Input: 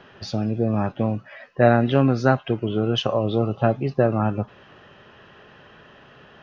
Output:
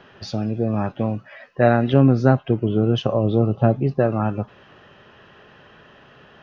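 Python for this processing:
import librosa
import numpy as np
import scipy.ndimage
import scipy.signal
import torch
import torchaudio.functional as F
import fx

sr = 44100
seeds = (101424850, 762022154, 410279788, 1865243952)

y = fx.tilt_shelf(x, sr, db=5.5, hz=680.0, at=(1.93, 3.99))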